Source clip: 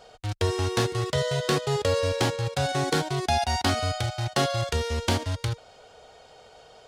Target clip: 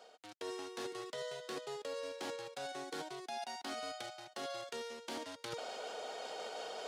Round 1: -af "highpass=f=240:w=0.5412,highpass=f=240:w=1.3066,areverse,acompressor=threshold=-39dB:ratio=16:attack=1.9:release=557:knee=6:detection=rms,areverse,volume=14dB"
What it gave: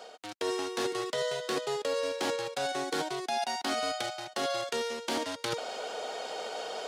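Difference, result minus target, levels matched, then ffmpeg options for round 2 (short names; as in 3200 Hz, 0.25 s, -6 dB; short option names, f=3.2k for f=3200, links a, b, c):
compressor: peak gain reduction -11 dB
-af "highpass=f=240:w=0.5412,highpass=f=240:w=1.3066,areverse,acompressor=threshold=-51dB:ratio=16:attack=1.9:release=557:knee=6:detection=rms,areverse,volume=14dB"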